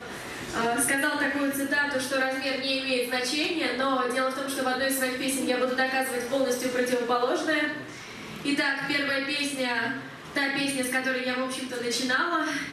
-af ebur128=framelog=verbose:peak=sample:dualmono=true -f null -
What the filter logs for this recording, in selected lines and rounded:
Integrated loudness:
  I:         -23.5 LUFS
  Threshold: -33.6 LUFS
Loudness range:
  LRA:         1.5 LU
  Threshold: -43.6 LUFS
  LRA low:   -24.4 LUFS
  LRA high:  -22.9 LUFS
Sample peak:
  Peak:      -12.1 dBFS